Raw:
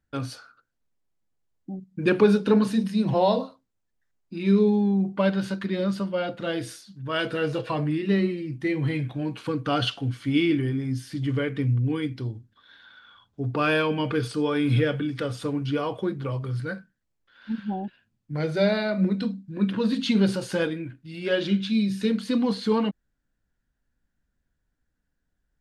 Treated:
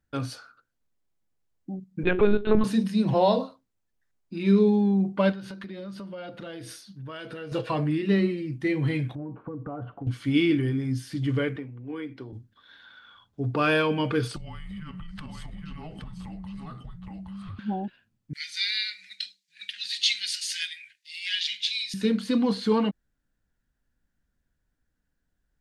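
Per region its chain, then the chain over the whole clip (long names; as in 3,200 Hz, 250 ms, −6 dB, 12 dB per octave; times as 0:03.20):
0:02.03–0:02.64: mains-hum notches 60/120/180/240/300/360/420 Hz + linear-prediction vocoder at 8 kHz pitch kept
0:05.32–0:07.52: notch filter 7,400 Hz, Q 5.6 + downward compressor 5 to 1, threshold −36 dBFS
0:09.15–0:10.07: low-pass filter 1,100 Hz 24 dB per octave + downward compressor 12 to 1, threshold −31 dBFS
0:11.56–0:12.33: downward compressor, threshold −27 dBFS + three-way crossover with the lows and the highs turned down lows −15 dB, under 250 Hz, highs −13 dB, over 2,600 Hz
0:14.36–0:17.59: frequency shifter −320 Hz + single-tap delay 819 ms −8.5 dB + downward compressor 10 to 1, threshold −35 dBFS
0:18.33–0:21.94: elliptic high-pass filter 1,900 Hz, stop band 50 dB + parametric band 5,600 Hz +11 dB 2.3 octaves
whole clip: no processing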